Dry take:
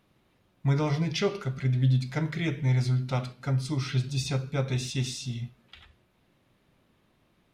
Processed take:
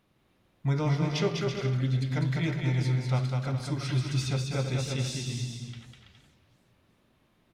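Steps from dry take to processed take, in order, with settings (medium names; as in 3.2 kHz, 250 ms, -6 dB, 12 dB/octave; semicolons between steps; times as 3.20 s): bouncing-ball echo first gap 200 ms, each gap 0.65×, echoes 5; modulated delay 366 ms, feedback 40%, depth 215 cents, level -21 dB; trim -2.5 dB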